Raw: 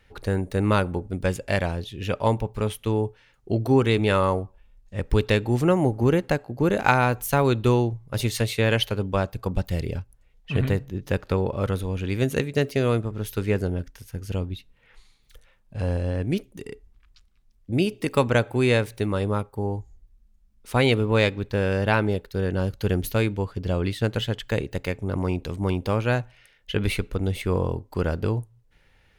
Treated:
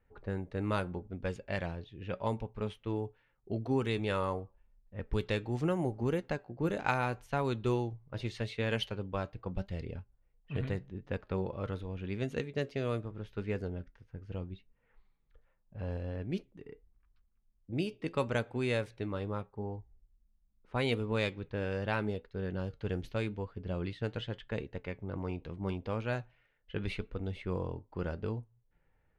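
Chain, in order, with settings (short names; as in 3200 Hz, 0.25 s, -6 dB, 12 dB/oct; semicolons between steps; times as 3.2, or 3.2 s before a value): flange 0.81 Hz, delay 4 ms, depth 2.9 ms, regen +77%; low-pass opened by the level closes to 1300 Hz, open at -19 dBFS; gain -7 dB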